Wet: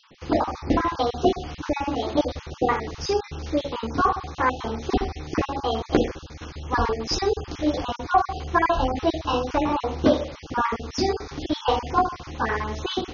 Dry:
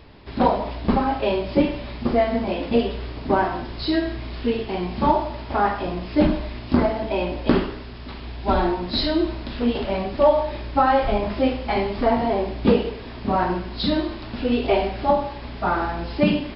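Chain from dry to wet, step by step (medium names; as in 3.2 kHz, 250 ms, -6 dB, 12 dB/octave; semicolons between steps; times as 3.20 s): random holes in the spectrogram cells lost 28%; tape speed +26%; trim -1 dB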